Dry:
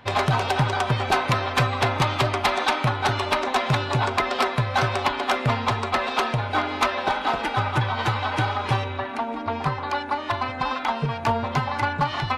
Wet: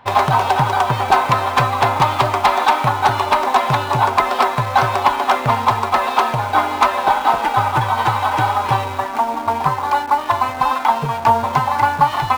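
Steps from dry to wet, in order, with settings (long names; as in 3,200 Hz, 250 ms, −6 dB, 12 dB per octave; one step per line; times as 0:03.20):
in parallel at −5 dB: bit reduction 5 bits
on the sum: parametric band 920 Hz +10.5 dB 0.92 octaves
level −2.5 dB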